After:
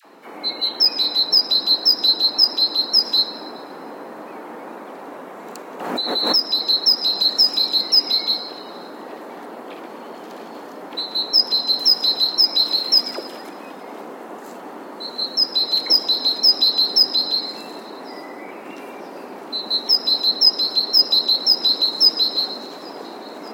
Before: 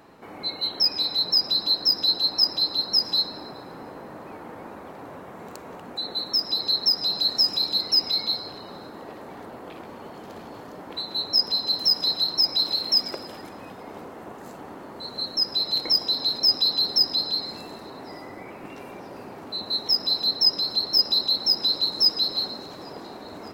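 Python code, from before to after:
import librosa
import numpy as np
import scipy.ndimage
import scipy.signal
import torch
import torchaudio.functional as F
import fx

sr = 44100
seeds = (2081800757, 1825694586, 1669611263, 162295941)

y = scipy.signal.sosfilt(scipy.signal.butter(4, 220.0, 'highpass', fs=sr, output='sos'), x)
y = fx.dispersion(y, sr, late='lows', ms=54.0, hz=900.0)
y = fx.pre_swell(y, sr, db_per_s=40.0, at=(5.8, 6.36))
y = y * librosa.db_to_amplitude(5.5)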